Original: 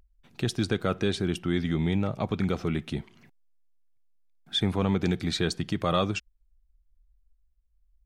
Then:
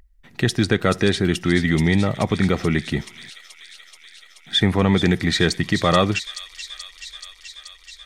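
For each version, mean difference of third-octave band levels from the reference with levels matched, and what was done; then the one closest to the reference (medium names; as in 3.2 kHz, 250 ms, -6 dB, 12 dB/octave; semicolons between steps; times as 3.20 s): 2.5 dB: peaking EQ 1.9 kHz +12.5 dB 0.23 oct; feedback echo behind a high-pass 430 ms, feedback 77%, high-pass 4.1 kHz, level -5 dB; trim +8 dB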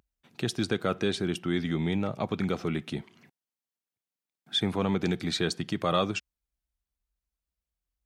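1.5 dB: high-pass 110 Hz 12 dB/octave; bass shelf 170 Hz -3.5 dB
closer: second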